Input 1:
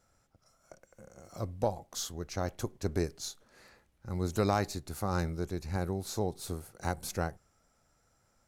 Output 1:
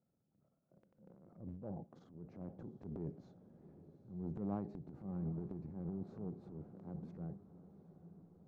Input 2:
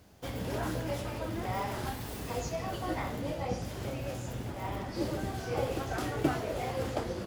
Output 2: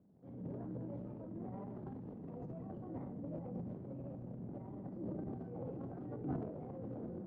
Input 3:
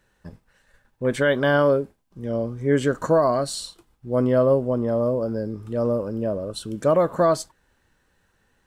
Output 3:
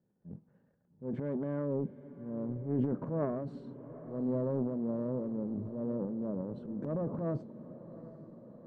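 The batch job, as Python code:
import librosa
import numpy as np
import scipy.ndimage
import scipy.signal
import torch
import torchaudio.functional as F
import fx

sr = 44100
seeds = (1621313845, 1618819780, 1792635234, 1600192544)

p1 = fx.diode_clip(x, sr, knee_db=-25.5)
p2 = fx.ladder_bandpass(p1, sr, hz=210.0, resonance_pct=40)
p3 = fx.transient(p2, sr, attack_db=-7, sustain_db=11)
p4 = p3 + fx.echo_diffused(p3, sr, ms=781, feedback_pct=66, wet_db=-15, dry=0)
y = p4 * librosa.db_to_amplitude(4.5)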